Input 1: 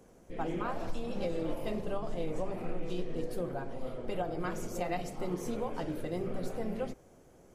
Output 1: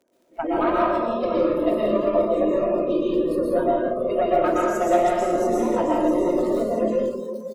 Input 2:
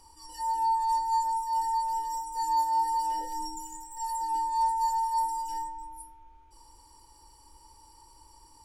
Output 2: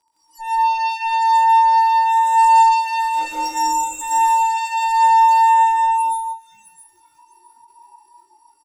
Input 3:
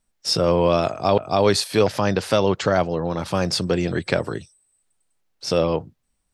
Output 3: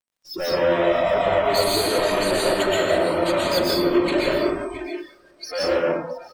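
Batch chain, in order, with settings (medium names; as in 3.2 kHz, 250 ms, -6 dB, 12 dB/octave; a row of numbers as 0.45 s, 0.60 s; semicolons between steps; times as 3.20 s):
resonances exaggerated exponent 1.5; high-pass 350 Hz 12 dB/octave; comb 3.2 ms, depth 55%; in parallel at -1.5 dB: gain riding within 4 dB 0.5 s; on the sum: valve stage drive 24 dB, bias 0.35; crackle 28 per s -37 dBFS; two-band feedback delay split 1.2 kHz, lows 484 ms, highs 665 ms, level -9.5 dB; plate-style reverb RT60 1.3 s, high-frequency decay 0.7×, pre-delay 105 ms, DRR -4.5 dB; spectral noise reduction 20 dB; endings held to a fixed fall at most 220 dB/s; peak normalisation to -6 dBFS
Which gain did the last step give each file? +7.5 dB, +3.0 dB, +0.5 dB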